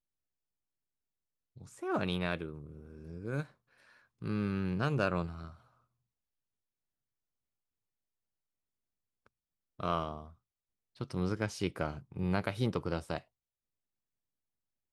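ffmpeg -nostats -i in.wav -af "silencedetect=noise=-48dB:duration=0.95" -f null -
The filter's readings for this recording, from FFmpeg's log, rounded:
silence_start: 0.00
silence_end: 1.57 | silence_duration: 1.57
silence_start: 5.54
silence_end: 9.26 | silence_duration: 3.73
silence_start: 13.21
silence_end: 14.92 | silence_duration: 1.72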